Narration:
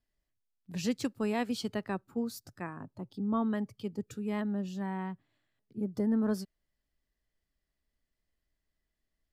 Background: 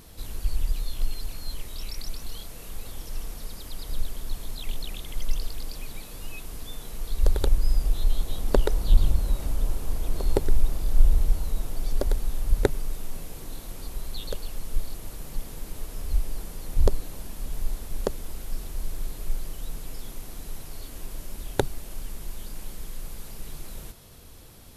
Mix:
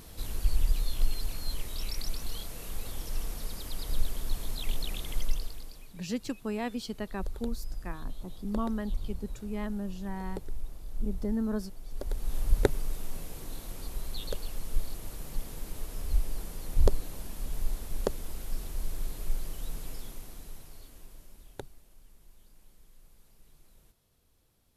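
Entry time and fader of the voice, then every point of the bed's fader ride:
5.25 s, -2.0 dB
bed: 5.16 s 0 dB
5.97 s -16 dB
11.84 s -16 dB
12.36 s -2.5 dB
19.88 s -2.5 dB
21.95 s -21.5 dB

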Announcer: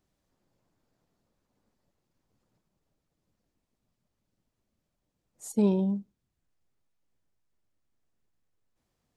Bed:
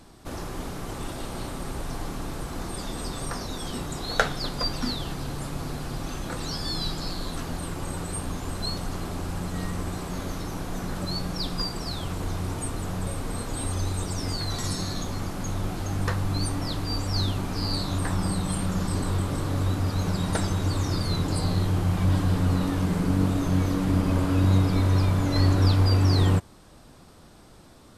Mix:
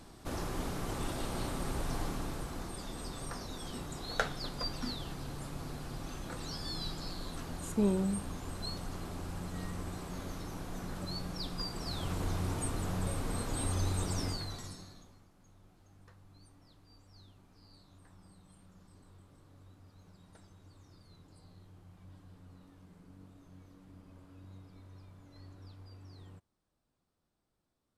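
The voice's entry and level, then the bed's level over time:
2.20 s, -5.0 dB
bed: 2.01 s -3 dB
2.78 s -9.5 dB
11.6 s -9.5 dB
12.12 s -4.5 dB
14.21 s -4.5 dB
15.28 s -32.5 dB

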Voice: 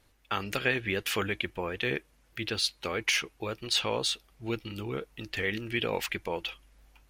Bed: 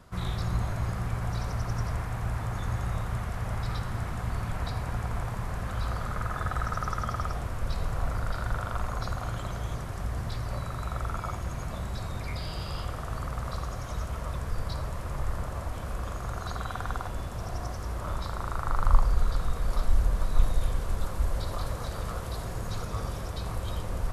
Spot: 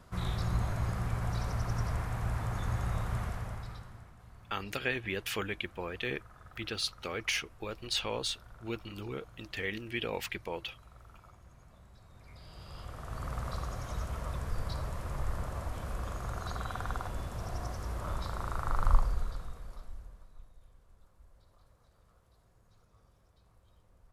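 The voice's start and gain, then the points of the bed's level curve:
4.20 s, -5.0 dB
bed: 3.26 s -2.5 dB
4.18 s -23 dB
12.05 s -23 dB
13.32 s -3.5 dB
18.91 s -3.5 dB
20.48 s -32 dB

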